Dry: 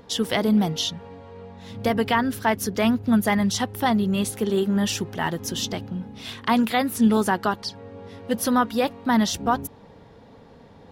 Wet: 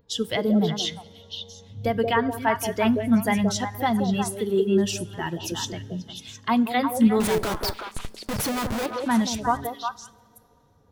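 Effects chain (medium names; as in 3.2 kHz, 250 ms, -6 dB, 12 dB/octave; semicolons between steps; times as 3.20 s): expander on every frequency bin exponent 1.5; bass shelf 350 Hz +2 dB; 7.20–8.86 s: Schmitt trigger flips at -40 dBFS; on a send: repeats whose band climbs or falls 178 ms, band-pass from 440 Hz, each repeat 1.4 oct, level 0 dB; on the sum: two-slope reverb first 0.37 s, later 3.3 s, from -18 dB, DRR 16.5 dB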